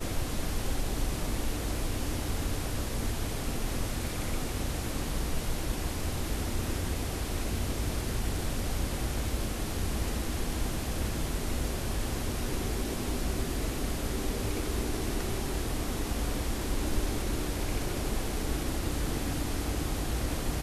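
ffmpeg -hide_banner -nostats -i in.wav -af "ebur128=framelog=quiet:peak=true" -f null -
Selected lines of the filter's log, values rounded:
Integrated loudness:
  I:         -33.4 LUFS
  Threshold: -43.4 LUFS
Loudness range:
  LRA:         0.9 LU
  Threshold: -53.4 LUFS
  LRA low:   -33.9 LUFS
  LRA high:  -33.0 LUFS
True peak:
  Peak:      -16.6 dBFS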